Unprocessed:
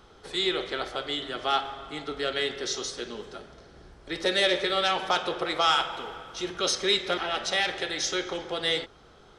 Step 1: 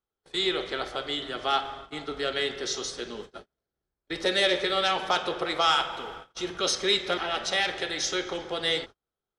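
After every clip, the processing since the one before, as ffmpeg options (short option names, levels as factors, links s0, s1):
-af "agate=range=0.0141:threshold=0.01:ratio=16:detection=peak"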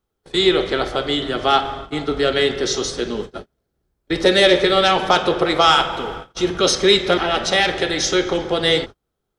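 -af "lowshelf=f=480:g=9,volume=2.51"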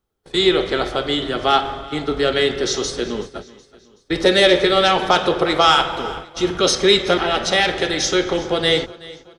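-af "aecho=1:1:375|750|1125:0.1|0.045|0.0202"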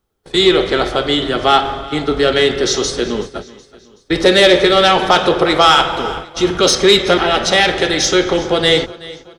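-af "asoftclip=type=tanh:threshold=0.501,volume=1.88"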